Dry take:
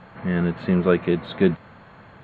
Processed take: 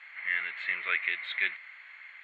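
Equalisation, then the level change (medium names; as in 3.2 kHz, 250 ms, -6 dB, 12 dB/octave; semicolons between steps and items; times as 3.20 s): resonant high-pass 2.1 kHz, resonance Q 9.4; -4.5 dB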